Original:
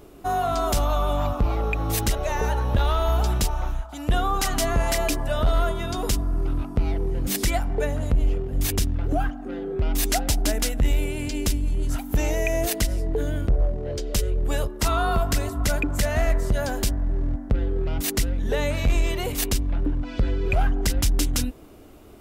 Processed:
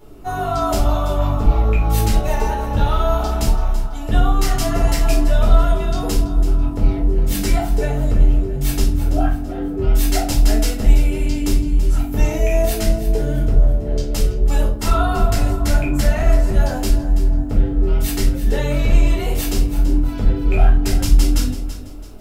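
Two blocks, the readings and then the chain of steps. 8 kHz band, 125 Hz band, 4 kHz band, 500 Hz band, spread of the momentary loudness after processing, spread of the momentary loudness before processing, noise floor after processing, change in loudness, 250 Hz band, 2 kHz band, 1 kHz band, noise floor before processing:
+0.5 dB, +6.5 dB, +1.5 dB, +4.0 dB, 4 LU, 4 LU, -25 dBFS, +6.0 dB, +7.0 dB, +1.0 dB, +3.5 dB, -36 dBFS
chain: simulated room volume 310 m³, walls furnished, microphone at 4.3 m; bit-crushed delay 332 ms, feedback 35%, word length 8-bit, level -13 dB; trim -5.5 dB

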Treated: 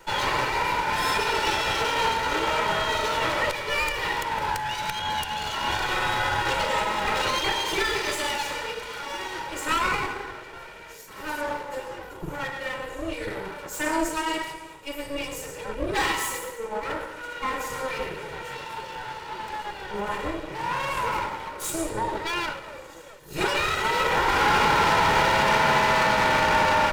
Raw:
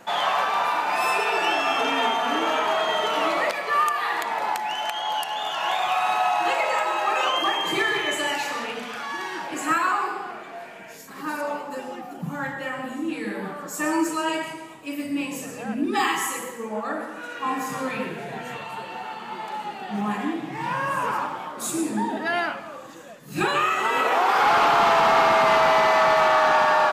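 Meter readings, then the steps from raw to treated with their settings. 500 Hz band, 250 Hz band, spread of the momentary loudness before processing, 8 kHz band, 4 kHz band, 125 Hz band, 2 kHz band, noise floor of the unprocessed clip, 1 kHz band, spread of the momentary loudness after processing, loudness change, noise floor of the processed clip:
-3.5 dB, -4.5 dB, 16 LU, +1.0 dB, +0.5 dB, +4.5 dB, -0.5 dB, -40 dBFS, -3.0 dB, 15 LU, -2.0 dB, -42 dBFS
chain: comb filter that takes the minimum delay 2.1 ms

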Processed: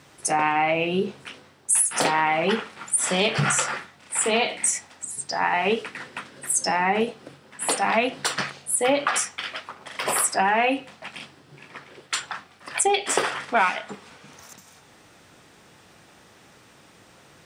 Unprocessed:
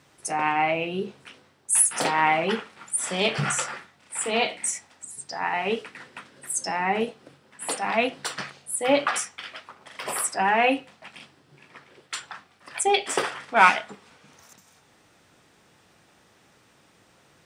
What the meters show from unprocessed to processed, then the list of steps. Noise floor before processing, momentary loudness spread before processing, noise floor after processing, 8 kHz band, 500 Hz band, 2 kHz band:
-60 dBFS, 20 LU, -53 dBFS, +3.0 dB, +2.0 dB, +1.0 dB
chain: compression 6:1, threshold -24 dBFS, peak gain reduction 13.5 dB; trim +6.5 dB

